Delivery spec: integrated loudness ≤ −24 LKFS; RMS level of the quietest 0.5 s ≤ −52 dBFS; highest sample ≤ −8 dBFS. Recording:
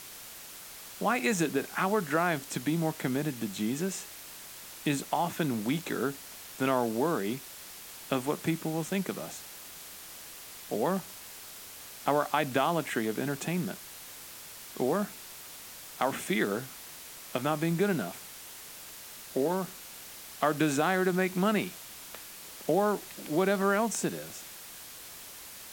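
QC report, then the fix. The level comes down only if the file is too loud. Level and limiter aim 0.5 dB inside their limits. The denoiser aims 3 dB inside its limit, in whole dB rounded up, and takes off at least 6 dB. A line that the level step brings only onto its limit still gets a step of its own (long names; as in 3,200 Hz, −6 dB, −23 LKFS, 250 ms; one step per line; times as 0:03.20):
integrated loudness −30.5 LKFS: in spec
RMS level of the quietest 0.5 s −46 dBFS: out of spec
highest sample −12.5 dBFS: in spec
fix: broadband denoise 9 dB, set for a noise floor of −46 dBFS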